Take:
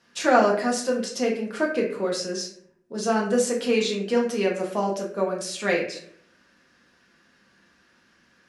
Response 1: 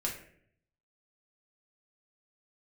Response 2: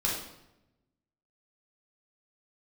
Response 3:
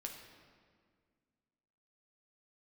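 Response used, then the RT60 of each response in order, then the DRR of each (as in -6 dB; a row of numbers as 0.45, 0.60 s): 1; 0.60, 0.90, 1.9 s; -2.5, -4.5, 1.5 dB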